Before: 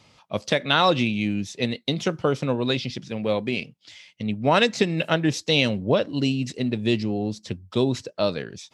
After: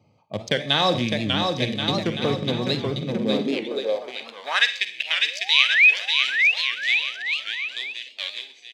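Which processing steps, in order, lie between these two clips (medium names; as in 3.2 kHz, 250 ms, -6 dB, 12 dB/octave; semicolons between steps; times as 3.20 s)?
local Wiener filter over 25 samples; treble shelf 6.8 kHz -4.5 dB; band-stop 1 kHz, Q 9.7; Schroeder reverb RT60 0.47 s, DRR 9.5 dB; painted sound rise, 5.21–5.94 s, 380–2900 Hz -21 dBFS; treble shelf 2.7 kHz +11 dB; comb of notches 1.4 kHz; on a send: bouncing-ball echo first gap 600 ms, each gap 0.8×, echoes 5; on the sum: high-pass sweep 92 Hz -> 2.3 kHz, 2.88–4.84 s; warped record 78 rpm, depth 160 cents; trim -2.5 dB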